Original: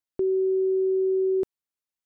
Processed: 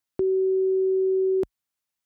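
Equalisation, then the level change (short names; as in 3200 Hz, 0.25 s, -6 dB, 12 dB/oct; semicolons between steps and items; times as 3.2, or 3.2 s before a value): HPF 42 Hz 24 dB/oct; bell 410 Hz -5.5 dB; +6.0 dB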